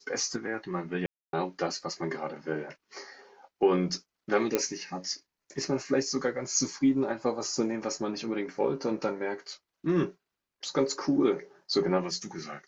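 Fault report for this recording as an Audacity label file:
1.060000	1.330000	dropout 272 ms
4.550000	4.550000	pop -11 dBFS

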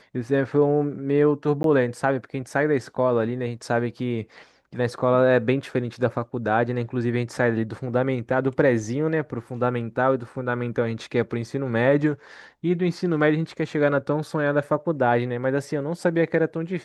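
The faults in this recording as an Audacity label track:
1.630000	1.640000	dropout 12 ms

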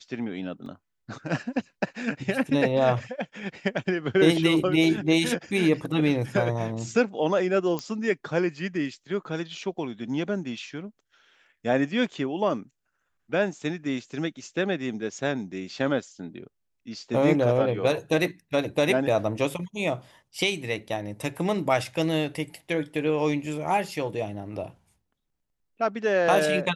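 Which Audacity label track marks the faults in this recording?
0.660000	0.660000	dropout 2.4 ms
7.790000	7.790000	pop -15 dBFS

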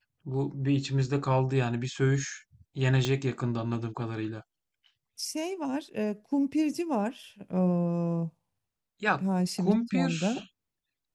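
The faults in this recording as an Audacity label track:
3.050000	3.050000	pop -15 dBFS

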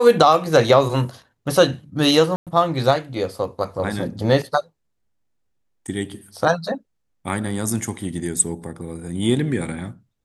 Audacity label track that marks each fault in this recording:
2.360000	2.470000	dropout 107 ms

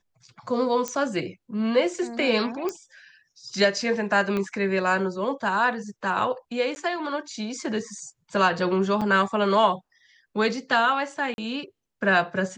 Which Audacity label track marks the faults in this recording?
0.880000	0.880000	pop -14 dBFS
2.690000	2.690000	pop -16 dBFS
4.370000	4.370000	pop -16 dBFS
6.750000	6.760000	dropout 10 ms
9.010000	9.020000	dropout 5.5 ms
11.340000	11.380000	dropout 41 ms

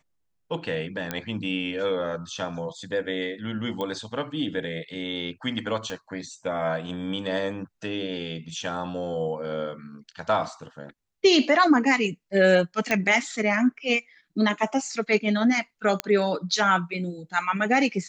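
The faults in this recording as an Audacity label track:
1.110000	1.110000	pop -12 dBFS
3.810000	3.810000	pop -18 dBFS
5.900000	5.900000	pop -20 dBFS
12.910000	12.910000	pop -10 dBFS
16.000000	16.000000	pop -8 dBFS

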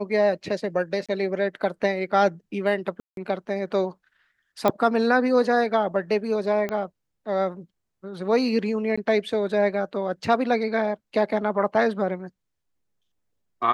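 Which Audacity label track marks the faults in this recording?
1.060000	1.090000	dropout 26 ms
3.000000	3.170000	dropout 172 ms
4.680000	4.680000	pop -9 dBFS
6.690000	6.690000	pop -16 dBFS
8.960000	8.970000	dropout 15 ms

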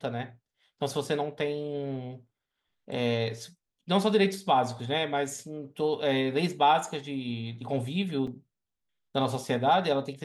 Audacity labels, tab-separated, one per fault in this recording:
8.270000	8.270000	dropout 4.3 ms

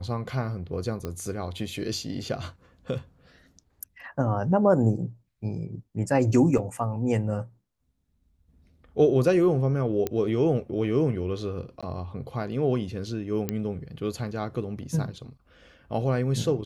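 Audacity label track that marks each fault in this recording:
1.050000	1.050000	pop -19 dBFS
6.580000	6.580000	dropout 4.4 ms
10.070000	10.070000	pop -14 dBFS
11.810000	11.830000	dropout 16 ms
13.490000	13.490000	pop -13 dBFS

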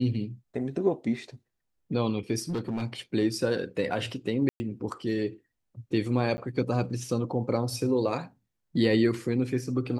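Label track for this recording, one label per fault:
2.390000	2.830000	clipped -26.5 dBFS
4.490000	4.600000	dropout 110 ms
6.370000	6.380000	dropout 10 ms

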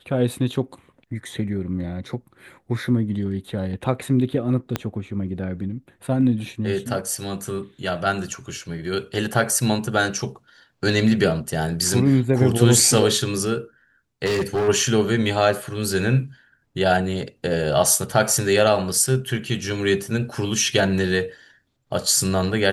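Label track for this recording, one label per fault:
4.760000	4.760000	pop -8 dBFS
14.250000	14.690000	clipped -18 dBFS

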